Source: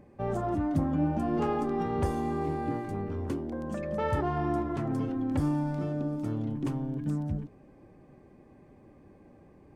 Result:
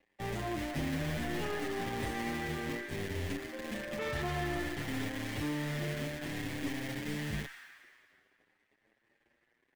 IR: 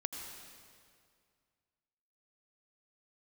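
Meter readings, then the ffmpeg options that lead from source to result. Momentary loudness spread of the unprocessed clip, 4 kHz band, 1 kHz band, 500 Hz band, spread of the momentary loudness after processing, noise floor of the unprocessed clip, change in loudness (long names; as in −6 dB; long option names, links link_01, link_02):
6 LU, can't be measured, −7.5 dB, −6.5 dB, 5 LU, −56 dBFS, −6.0 dB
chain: -filter_complex "[0:a]acrossover=split=250[link_01][link_02];[link_01]acrusher=bits=5:mix=0:aa=0.000001[link_03];[link_03][link_02]amix=inputs=2:normalize=0,equalizer=frequency=3200:width=7.1:gain=4,aeval=exprs='sgn(val(0))*max(abs(val(0))-0.0015,0)':channel_layout=same,asplit=2[link_04][link_05];[link_05]highpass=frequency=1800:width_type=q:width=5.4[link_06];[1:a]atrim=start_sample=2205[link_07];[link_06][link_07]afir=irnorm=-1:irlink=0,volume=-2dB[link_08];[link_04][link_08]amix=inputs=2:normalize=0,aeval=exprs='(tanh(22.4*val(0)+0.45)-tanh(0.45))/22.4':channel_layout=same,asplit=2[link_09][link_10];[link_10]adelay=7.4,afreqshift=0.59[link_11];[link_09][link_11]amix=inputs=2:normalize=1"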